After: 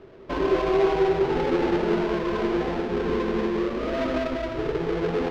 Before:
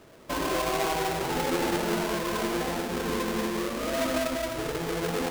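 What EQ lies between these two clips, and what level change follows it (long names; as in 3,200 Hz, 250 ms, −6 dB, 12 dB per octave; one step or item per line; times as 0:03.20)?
high-frequency loss of the air 230 metres
low-shelf EQ 87 Hz +6.5 dB
parametric band 390 Hz +13 dB 0.25 octaves
+1.5 dB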